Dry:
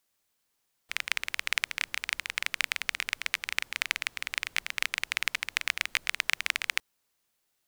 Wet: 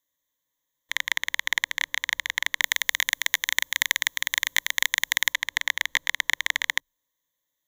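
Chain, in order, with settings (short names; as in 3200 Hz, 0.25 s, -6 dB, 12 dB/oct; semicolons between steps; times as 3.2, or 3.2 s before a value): ripple EQ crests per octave 1.1, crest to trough 16 dB; sample leveller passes 2; 2.62–5.33 high shelf 5200 Hz +10.5 dB; gain -3 dB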